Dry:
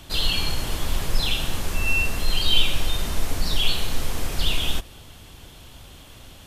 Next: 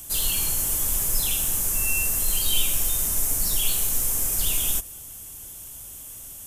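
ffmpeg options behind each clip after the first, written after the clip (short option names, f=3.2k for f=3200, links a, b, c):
-af "aexciter=amount=4.8:drive=10:freq=6.2k,volume=-6.5dB"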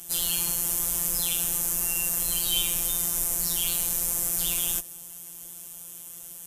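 -af "afftfilt=real='hypot(re,im)*cos(PI*b)':imag='0':win_size=1024:overlap=0.75,highpass=f=48:p=1,volume=1.5dB"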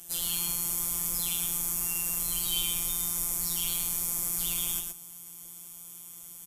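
-af "aecho=1:1:117:0.562,volume=-5dB"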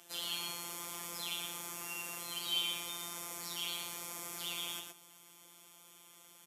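-filter_complex "[0:a]highpass=100,acrossover=split=290 4700:gain=0.178 1 0.141[a][b][c];[a][b][c]amix=inputs=3:normalize=0"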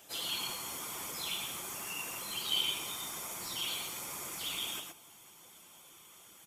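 -af "afftfilt=real='hypot(re,im)*cos(2*PI*random(0))':imag='hypot(re,im)*sin(2*PI*random(1))':win_size=512:overlap=0.75,volume=8.5dB"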